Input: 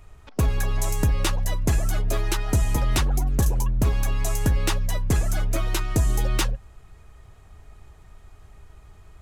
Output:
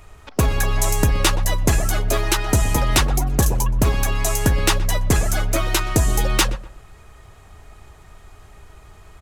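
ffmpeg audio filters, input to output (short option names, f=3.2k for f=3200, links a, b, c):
-filter_complex "[0:a]lowshelf=f=250:g=-6.5,asplit=2[a][b];[b]adelay=123,lowpass=f=1.7k:p=1,volume=-15.5dB,asplit=2[c][d];[d]adelay=123,lowpass=f=1.7k:p=1,volume=0.34,asplit=2[e][f];[f]adelay=123,lowpass=f=1.7k:p=1,volume=0.34[g];[c][e][g]amix=inputs=3:normalize=0[h];[a][h]amix=inputs=2:normalize=0,volume=8.5dB"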